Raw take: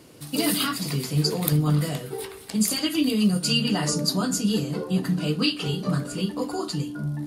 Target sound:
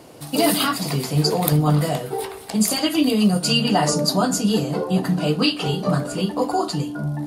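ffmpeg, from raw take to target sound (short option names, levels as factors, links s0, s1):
-af "equalizer=f=740:w=1.4:g=10.5,volume=1.41"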